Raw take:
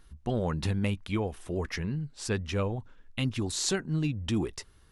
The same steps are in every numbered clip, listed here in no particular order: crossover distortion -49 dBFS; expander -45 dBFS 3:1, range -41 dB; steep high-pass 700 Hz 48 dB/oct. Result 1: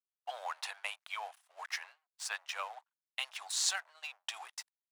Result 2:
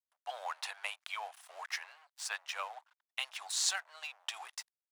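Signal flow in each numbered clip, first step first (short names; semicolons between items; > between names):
crossover distortion > steep high-pass > expander; expander > crossover distortion > steep high-pass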